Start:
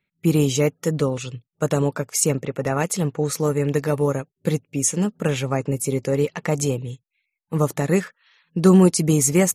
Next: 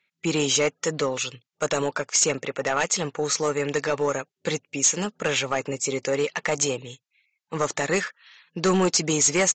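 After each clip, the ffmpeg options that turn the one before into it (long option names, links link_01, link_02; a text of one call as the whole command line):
ffmpeg -i in.wav -af "highpass=frequency=1300:poles=1,aresample=16000,asoftclip=type=tanh:threshold=-22dB,aresample=44100,volume=8dB" out.wav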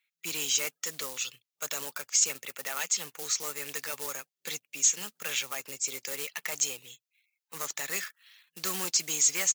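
ffmpeg -i in.wav -filter_complex "[0:a]bass=frequency=250:gain=10,treble=frequency=4000:gain=-6,acrossover=split=190|2900[link_01][link_02][link_03];[link_02]acrusher=bits=4:mode=log:mix=0:aa=0.000001[link_04];[link_01][link_04][link_03]amix=inputs=3:normalize=0,aderivative,volume=3dB" out.wav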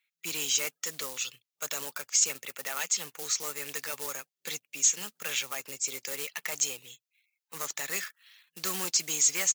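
ffmpeg -i in.wav -af anull out.wav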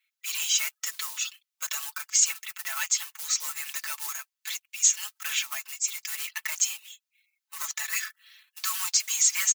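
ffmpeg -i in.wav -af "highpass=frequency=980:width=0.5412,highpass=frequency=980:width=1.3066,aecho=1:1:4.6:0.98" out.wav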